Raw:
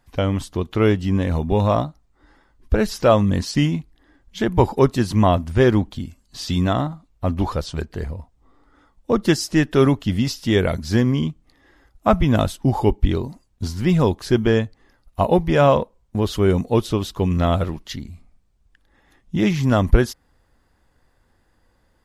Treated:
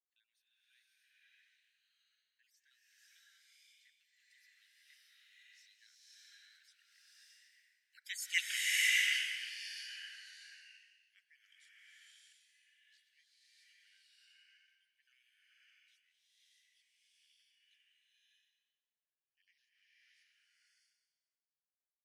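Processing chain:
time-frequency cells dropped at random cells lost 27%
source passing by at 0:08.43, 44 m/s, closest 2.5 metres
Butterworth high-pass 1,600 Hz 96 dB per octave
slow-attack reverb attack 630 ms, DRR −8.5 dB

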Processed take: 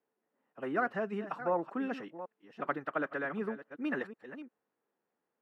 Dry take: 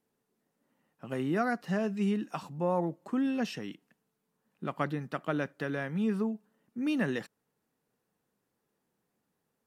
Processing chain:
delay that plays each chunk backwards 671 ms, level −11.5 dB
dynamic equaliser 1,400 Hz, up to +5 dB, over −50 dBFS, Q 1.8
phase-vocoder stretch with locked phases 0.56×
three-way crossover with the lows and the highs turned down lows −17 dB, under 280 Hz, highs −17 dB, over 2,600 Hz

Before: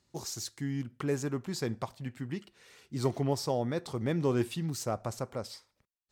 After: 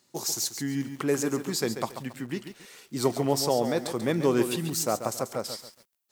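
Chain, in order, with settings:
high-pass filter 200 Hz 12 dB per octave
high-shelf EQ 8,900 Hz +11.5 dB
feedback echo at a low word length 138 ms, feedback 35%, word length 9 bits, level −9 dB
level +6 dB

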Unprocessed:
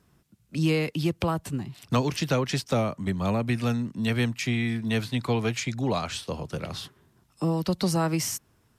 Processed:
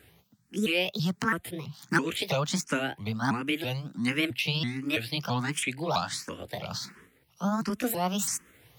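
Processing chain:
pitch shifter swept by a sawtooth +6 semitones, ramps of 331 ms
spectral tilt +4.5 dB per octave
reversed playback
upward compression, threshold −41 dBFS
reversed playback
bass and treble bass +11 dB, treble −15 dB
frequency shifter mixed with the dry sound +1.4 Hz
level +3.5 dB

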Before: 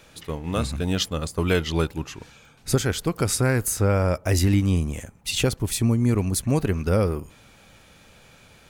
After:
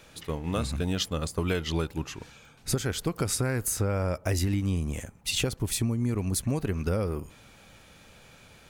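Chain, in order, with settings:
downward compressor, threshold −22 dBFS, peak gain reduction 7.5 dB
level −1.5 dB

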